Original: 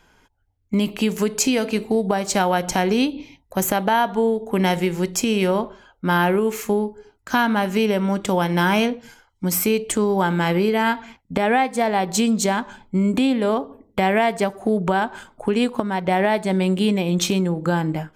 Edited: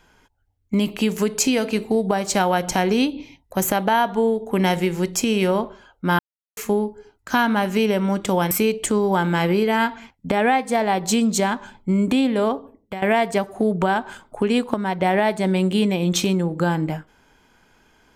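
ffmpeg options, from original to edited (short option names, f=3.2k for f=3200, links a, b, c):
-filter_complex "[0:a]asplit=5[a][b][c][d][e];[a]atrim=end=6.19,asetpts=PTS-STARTPTS,afade=t=out:st=6.186:d=0.004:c=hsin[f];[b]atrim=start=6.19:end=6.57,asetpts=PTS-STARTPTS,volume=0[g];[c]atrim=start=6.57:end=8.512,asetpts=PTS-STARTPTS,afade=t=in:d=0.004:c=hsin[h];[d]atrim=start=9.568:end=14.08,asetpts=PTS-STARTPTS,afade=t=out:st=4.052:d=0.46:silence=0.158489[i];[e]atrim=start=14.08,asetpts=PTS-STARTPTS,afade=t=in:d=0.004:c=hsin:silence=0.158489[j];[f][g][h]concat=n=3:v=0:a=1[k];[i][j]concat=n=2:v=0:a=1[l];[k][l]acrossfade=d=0.004:c1=hsin:c2=hsin"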